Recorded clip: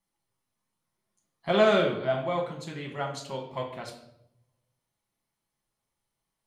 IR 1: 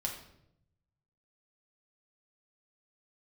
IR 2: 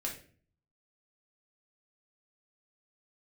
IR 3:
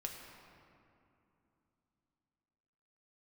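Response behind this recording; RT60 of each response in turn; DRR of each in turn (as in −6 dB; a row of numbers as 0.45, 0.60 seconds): 1; 0.75, 0.45, 2.9 seconds; −0.5, −2.0, 0.5 decibels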